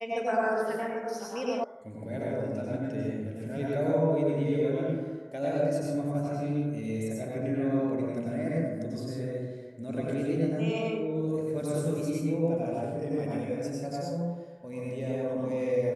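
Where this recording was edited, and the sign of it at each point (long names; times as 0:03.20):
0:01.64: cut off before it has died away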